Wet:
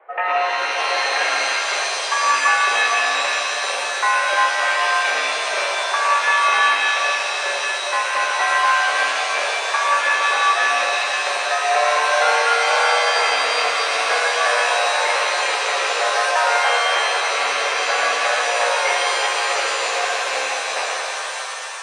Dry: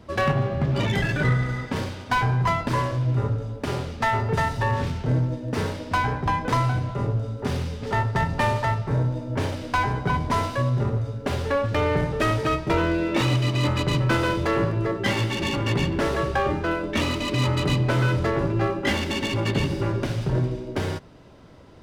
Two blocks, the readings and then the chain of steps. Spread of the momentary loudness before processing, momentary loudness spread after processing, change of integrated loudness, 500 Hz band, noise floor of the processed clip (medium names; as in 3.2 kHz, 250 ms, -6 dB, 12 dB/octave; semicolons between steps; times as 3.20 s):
6 LU, 5 LU, +6.5 dB, +3.0 dB, -25 dBFS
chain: rattle on loud lows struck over -25 dBFS, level -14 dBFS; mistuned SSB +150 Hz 390–2200 Hz; pitch-shifted reverb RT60 3.5 s, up +7 st, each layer -2 dB, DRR -2 dB; trim +2.5 dB